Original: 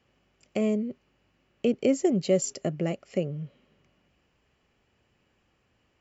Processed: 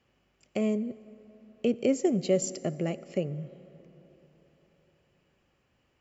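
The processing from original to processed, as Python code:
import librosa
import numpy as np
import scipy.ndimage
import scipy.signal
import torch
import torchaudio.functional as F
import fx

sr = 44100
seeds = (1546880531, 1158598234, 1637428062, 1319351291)

y = fx.rev_plate(x, sr, seeds[0], rt60_s=4.2, hf_ratio=0.4, predelay_ms=0, drr_db=16.5)
y = F.gain(torch.from_numpy(y), -2.0).numpy()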